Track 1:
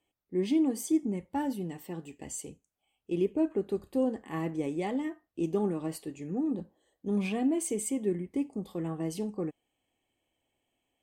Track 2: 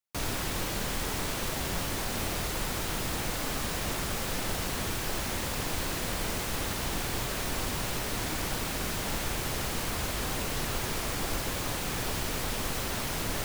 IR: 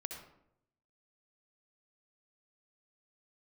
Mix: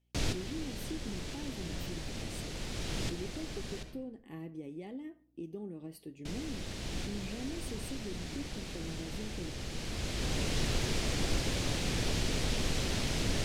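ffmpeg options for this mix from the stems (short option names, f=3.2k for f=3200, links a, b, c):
-filter_complex "[0:a]equalizer=f=7.4k:w=2.9:g=-14.5,acompressor=threshold=-37dB:ratio=3,aeval=exprs='val(0)+0.000282*(sin(2*PI*60*n/s)+sin(2*PI*2*60*n/s)/2+sin(2*PI*3*60*n/s)/3+sin(2*PI*4*60*n/s)/4+sin(2*PI*5*60*n/s)/5)':c=same,volume=-4dB,asplit=3[a][b][c];[b]volume=-16dB[d];[1:a]lowpass=6k,volume=1dB,asplit=3[e][f][g];[e]atrim=end=3.83,asetpts=PTS-STARTPTS,afade=t=out:st=3.826:d=0.004:c=hsin[h];[f]atrim=start=3.83:end=6.25,asetpts=PTS-STARTPTS,volume=0[i];[g]atrim=start=6.25,asetpts=PTS-STARTPTS,afade=t=in:d=0.004:c=hsin[j];[h][i][j]concat=n=3:v=0:a=1,asplit=2[k][l];[l]volume=-9.5dB[m];[c]apad=whole_len=592954[n];[k][n]sidechaincompress=threshold=-54dB:ratio=8:attack=5.5:release=866[o];[2:a]atrim=start_sample=2205[p];[d][m]amix=inputs=2:normalize=0[q];[q][p]afir=irnorm=-1:irlink=0[r];[a][o][r]amix=inputs=3:normalize=0,equalizer=f=1.1k:t=o:w=1.7:g=-11"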